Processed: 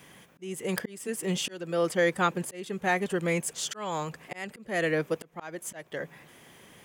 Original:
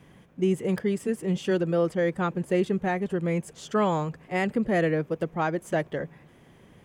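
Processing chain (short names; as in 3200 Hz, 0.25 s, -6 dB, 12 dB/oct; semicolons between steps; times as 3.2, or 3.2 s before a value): auto swell 0.447 s; tilt +3 dB/oct; gain +3.5 dB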